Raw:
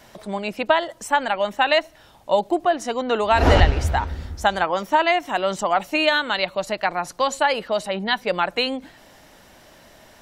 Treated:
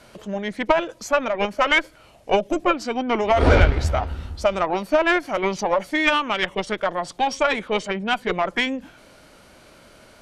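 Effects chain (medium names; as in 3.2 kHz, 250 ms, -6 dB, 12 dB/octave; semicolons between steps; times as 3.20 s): Chebyshev shaper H 8 -27 dB, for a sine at -1 dBFS; formant shift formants -4 st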